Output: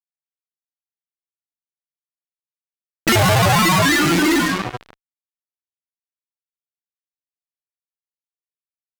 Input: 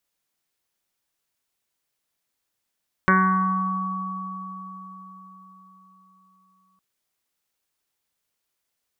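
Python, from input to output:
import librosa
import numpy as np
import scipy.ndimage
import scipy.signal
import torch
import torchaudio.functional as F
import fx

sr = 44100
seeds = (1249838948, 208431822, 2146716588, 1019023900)

y = fx.halfwave_hold(x, sr)
y = fx.granulator(y, sr, seeds[0], grain_ms=78.0, per_s=30.0, spray_ms=17.0, spread_st=12)
y = fx.spec_repair(y, sr, seeds[1], start_s=3.96, length_s=0.41, low_hz=210.0, high_hz=1100.0, source='before')
y = fx.env_lowpass(y, sr, base_hz=310.0, full_db=-22.5)
y = fx.room_flutter(y, sr, wall_m=8.7, rt60_s=0.24)
y = fx.fuzz(y, sr, gain_db=41.0, gate_db=-36.0)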